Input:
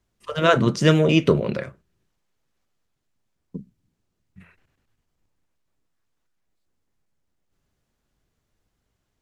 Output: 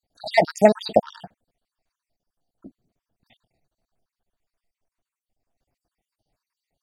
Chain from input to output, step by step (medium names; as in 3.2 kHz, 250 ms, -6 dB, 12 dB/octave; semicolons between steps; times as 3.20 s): random holes in the spectrogram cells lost 59%; small resonant body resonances 510/3400 Hz, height 12 dB, ringing for 30 ms; speed mistake 33 rpm record played at 45 rpm; trim -1.5 dB